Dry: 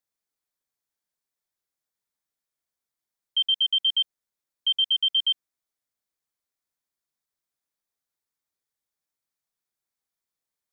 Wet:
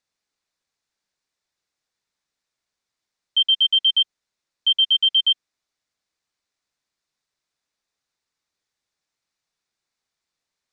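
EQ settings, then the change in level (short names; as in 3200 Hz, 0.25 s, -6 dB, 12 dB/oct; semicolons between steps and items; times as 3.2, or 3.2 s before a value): air absorption 130 m; high shelf 2900 Hz +11.5 dB; notch 3200 Hz, Q 18; +6.5 dB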